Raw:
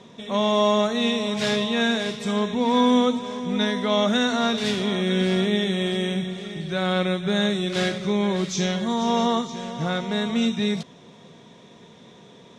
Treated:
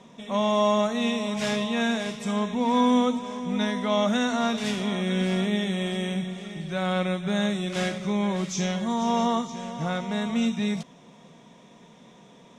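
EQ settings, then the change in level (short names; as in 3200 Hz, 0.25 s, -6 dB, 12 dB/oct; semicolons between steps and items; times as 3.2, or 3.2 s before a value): fifteen-band EQ 100 Hz -12 dB, 400 Hz -7 dB, 1600 Hz -4 dB, 4000 Hz -8 dB; 0.0 dB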